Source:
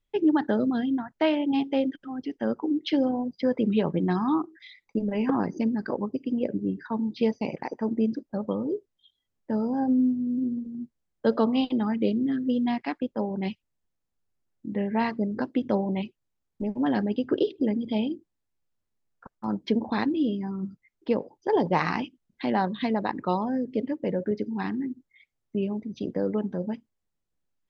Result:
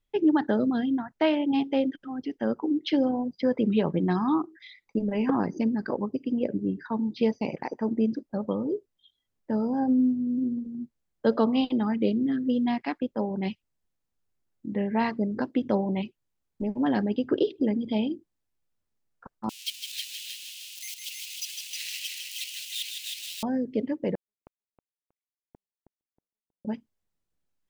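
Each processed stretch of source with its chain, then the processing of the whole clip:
19.49–23.43 zero-crossing step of -25 dBFS + elliptic high-pass 2700 Hz, stop band 60 dB + multi-head echo 0.157 s, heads first and second, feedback 45%, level -6 dB
24.15–26.65 flipped gate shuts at -29 dBFS, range -30 dB + power-law curve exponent 3 + feedback echo 0.318 s, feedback 27%, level -7 dB
whole clip: dry

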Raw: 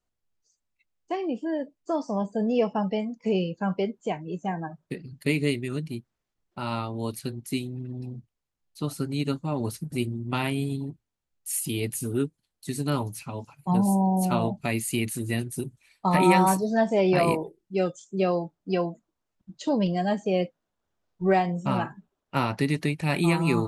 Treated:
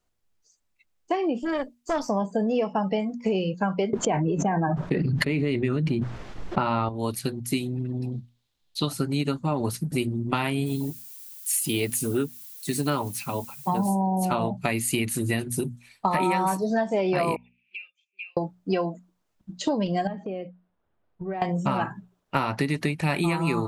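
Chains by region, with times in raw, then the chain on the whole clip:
1.4–2.09 high shelf 2200 Hz +9.5 dB + tube stage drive 25 dB, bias 0.75
3.93–6.89 tape spacing loss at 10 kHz 22 dB + fast leveller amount 100%
8.12–8.89 bell 3700 Hz +13.5 dB + notch 1300 Hz, Q 28
10.65–13.88 low shelf 120 Hz -8.5 dB + added noise violet -50 dBFS
17.36–18.37 Butterworth band-pass 2500 Hz, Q 7.1 + three-band squash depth 100%
20.07–21.42 compressor, threshold -35 dBFS + air absorption 400 m
whole clip: notches 60/120/180/240 Hz; dynamic EQ 1200 Hz, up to +4 dB, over -40 dBFS, Q 0.71; compressor, threshold -28 dBFS; gain +6.5 dB

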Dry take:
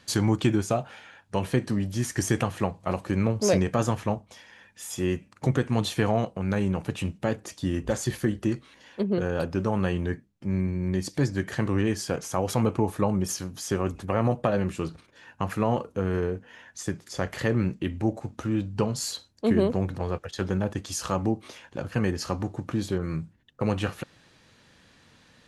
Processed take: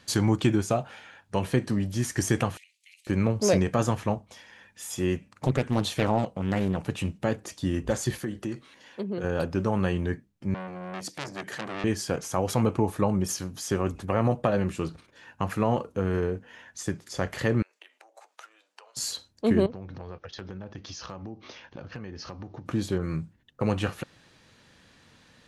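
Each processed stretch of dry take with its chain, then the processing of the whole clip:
2.57–3.07 steep high-pass 2100 Hz 72 dB/oct + compressor, threshold -50 dBFS
5.15–6.87 bell 350 Hz -4 dB 0.28 oct + Doppler distortion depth 0.84 ms
8.18–9.24 low shelf 84 Hz -10 dB + compressor 2:1, threshold -31 dBFS + HPF 56 Hz
10.54–11.84 HPF 130 Hz 24 dB/oct + low shelf 230 Hz -5.5 dB + core saturation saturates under 2900 Hz
17.62–18.97 compressor 12:1, threshold -36 dBFS + Bessel high-pass 920 Hz, order 6
19.66–22.66 steep low-pass 6100 Hz 72 dB/oct + compressor 4:1, threshold -37 dBFS + hard clip -26 dBFS
whole clip: dry

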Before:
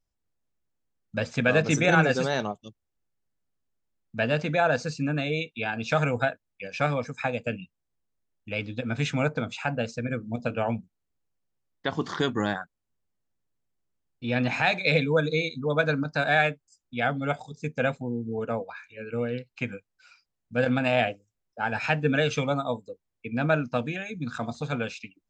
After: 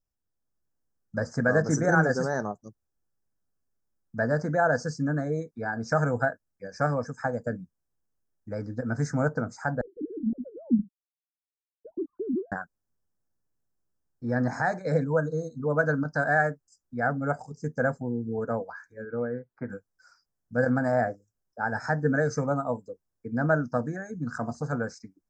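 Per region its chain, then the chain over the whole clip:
9.81–12.52 sine-wave speech + ladder low-pass 360 Hz, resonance 35% + tilt -4 dB/oct
15.04–15.6 bell 430 Hz +11 dB 0.94 oct + fixed phaser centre 970 Hz, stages 4
19.05–19.7 LPF 2300 Hz 24 dB/oct + low shelf 130 Hz -10.5 dB
whole clip: AGC gain up to 5 dB; elliptic band-stop 1700–5100 Hz, stop band 60 dB; gain -4.5 dB

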